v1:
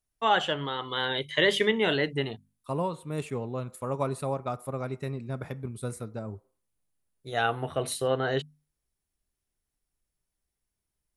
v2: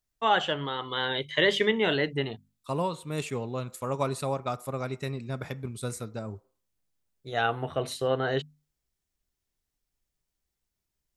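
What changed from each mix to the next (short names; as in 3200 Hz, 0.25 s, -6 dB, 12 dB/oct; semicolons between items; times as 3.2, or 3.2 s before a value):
second voice: add high shelf 2700 Hz +12 dB; master: add bell 10000 Hz -13 dB 0.37 oct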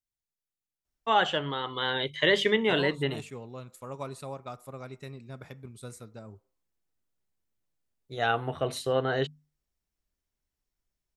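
first voice: entry +0.85 s; second voice -9.0 dB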